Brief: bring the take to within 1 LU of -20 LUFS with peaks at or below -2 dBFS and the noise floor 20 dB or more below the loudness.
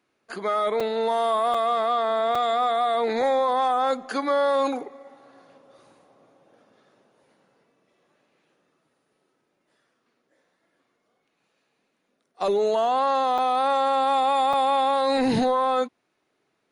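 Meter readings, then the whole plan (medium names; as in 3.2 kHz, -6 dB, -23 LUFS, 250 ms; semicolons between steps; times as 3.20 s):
dropouts 5; longest dropout 4.5 ms; loudness -23.0 LUFS; peak level -14.5 dBFS; loudness target -20.0 LUFS
-> interpolate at 0.80/1.54/2.35/13.38/14.53 s, 4.5 ms; trim +3 dB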